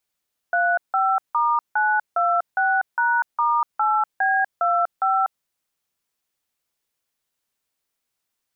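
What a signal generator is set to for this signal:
touch tones "35*926#*8B25", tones 244 ms, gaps 164 ms, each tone −19.5 dBFS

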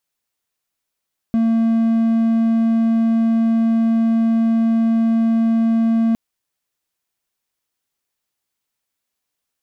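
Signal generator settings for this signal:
tone triangle 227 Hz −11 dBFS 4.81 s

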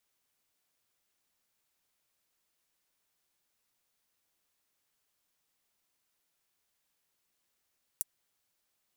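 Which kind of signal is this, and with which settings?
closed synth hi-hat, high-pass 8,500 Hz, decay 0.03 s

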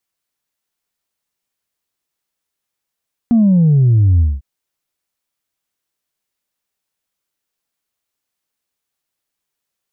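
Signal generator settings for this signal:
bass drop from 240 Hz, over 1.10 s, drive 0.5 dB, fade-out 0.21 s, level −8 dB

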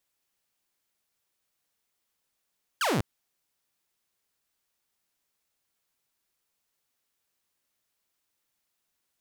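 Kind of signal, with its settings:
single falling chirp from 1,700 Hz, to 87 Hz, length 0.20 s saw, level −21 dB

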